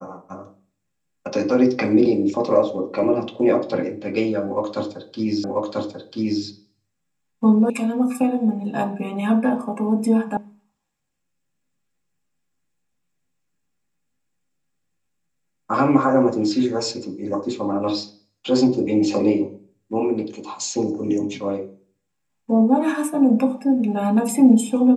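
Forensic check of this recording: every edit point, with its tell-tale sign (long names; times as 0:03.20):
0:05.44: the same again, the last 0.99 s
0:07.70: cut off before it has died away
0:10.37: cut off before it has died away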